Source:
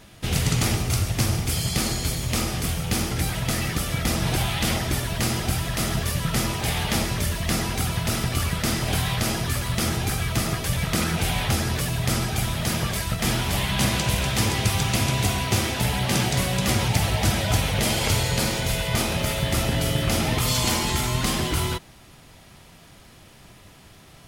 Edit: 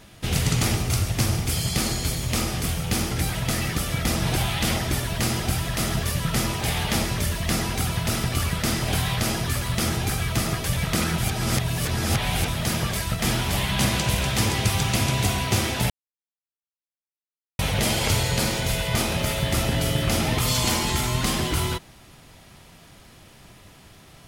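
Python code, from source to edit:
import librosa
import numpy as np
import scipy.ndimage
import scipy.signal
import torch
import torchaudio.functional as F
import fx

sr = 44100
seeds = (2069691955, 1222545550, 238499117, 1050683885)

y = fx.edit(x, sr, fx.reverse_span(start_s=11.18, length_s=1.3),
    fx.silence(start_s=15.9, length_s=1.69), tone=tone)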